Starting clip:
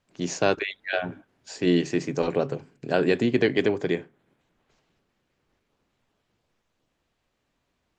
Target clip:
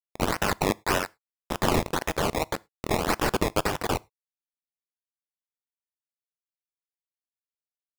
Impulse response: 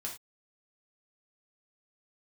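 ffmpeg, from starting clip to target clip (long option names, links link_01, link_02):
-filter_complex "[0:a]highpass=590,acompressor=threshold=-31dB:ratio=6,aresample=11025,acrusher=bits=5:mix=0:aa=0.000001,aresample=44100,aexciter=amount=8.4:drive=4.9:freq=2700,acrusher=samples=20:mix=1:aa=0.000001:lfo=1:lforange=20:lforate=1.8,asplit=2[link_01][link_02];[1:a]atrim=start_sample=2205[link_03];[link_02][link_03]afir=irnorm=-1:irlink=0,volume=-20dB[link_04];[link_01][link_04]amix=inputs=2:normalize=0"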